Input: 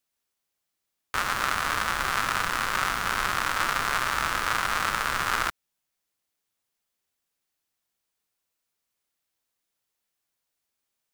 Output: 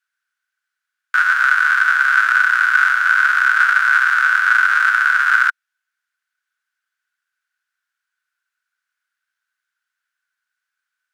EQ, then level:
high-pass with resonance 1,500 Hz, resonance Q 14
high-shelf EQ 10,000 Hz −11 dB
−1.0 dB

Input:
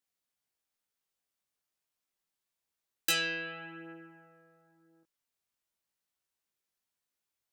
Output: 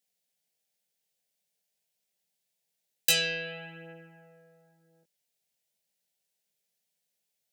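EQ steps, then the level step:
high-pass filter 56 Hz
phaser with its sweep stopped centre 310 Hz, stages 6
+6.5 dB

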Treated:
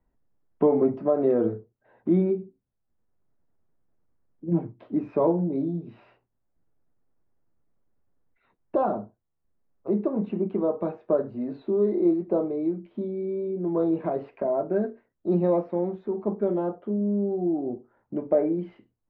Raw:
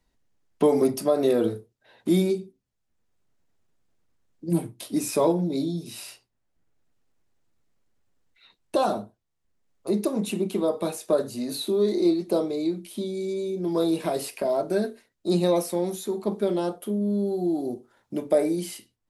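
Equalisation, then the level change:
Bessel low-pass filter 1,200 Hz, order 4
high-frequency loss of the air 53 metres
0.0 dB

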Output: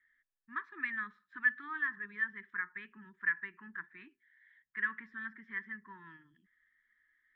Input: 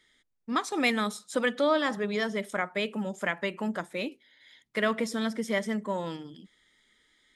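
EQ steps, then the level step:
elliptic band-stop filter 380–970 Hz, stop band 40 dB
transistor ladder low-pass 1,800 Hz, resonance 85%
parametric band 310 Hz −8 dB 2.6 octaves
−2.0 dB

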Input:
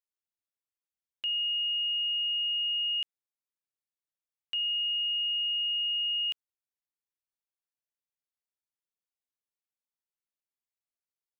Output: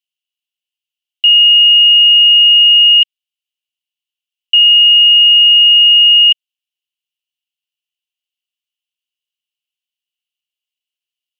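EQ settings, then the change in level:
high-pass with resonance 2,900 Hz, resonance Q 12
+2.5 dB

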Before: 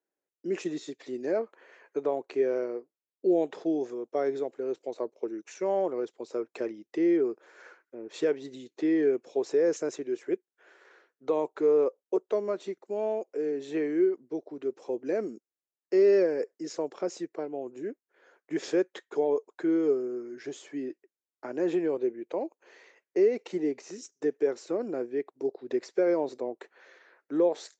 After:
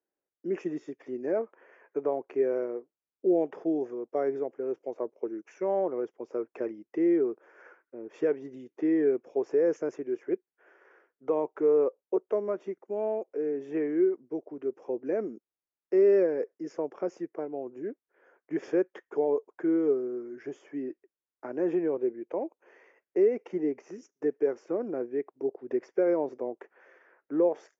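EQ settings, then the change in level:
moving average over 11 samples
0.0 dB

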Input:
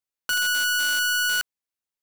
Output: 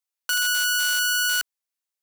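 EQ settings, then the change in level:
high-pass filter 74 Hz 12 dB per octave
bass and treble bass −14 dB, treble +3 dB
low-shelf EQ 380 Hz −9 dB
0.0 dB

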